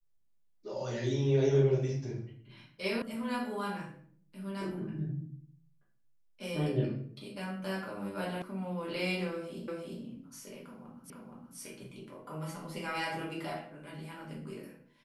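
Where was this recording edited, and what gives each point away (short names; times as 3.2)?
3.02 sound cut off
8.42 sound cut off
9.68 repeat of the last 0.35 s
11.1 repeat of the last 0.47 s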